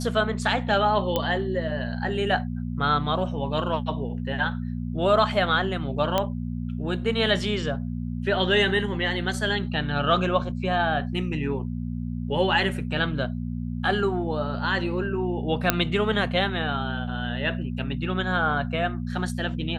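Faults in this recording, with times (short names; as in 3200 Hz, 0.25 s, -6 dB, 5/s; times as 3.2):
hum 60 Hz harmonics 4 -30 dBFS
1.16 pop -10 dBFS
6.18 pop -9 dBFS
15.7 pop -2 dBFS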